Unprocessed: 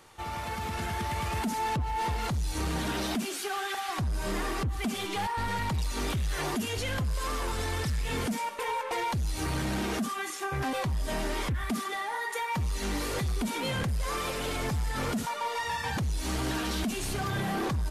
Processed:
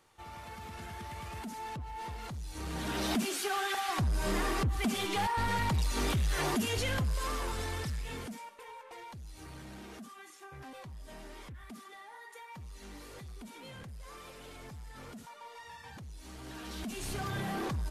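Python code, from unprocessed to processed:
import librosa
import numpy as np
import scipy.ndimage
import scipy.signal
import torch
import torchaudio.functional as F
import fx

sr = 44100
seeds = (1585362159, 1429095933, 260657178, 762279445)

y = fx.gain(x, sr, db=fx.line((2.51, -11.0), (3.13, 0.0), (6.79, 0.0), (7.95, -6.5), (8.63, -17.0), (16.37, -17.0), (17.09, -5.0)))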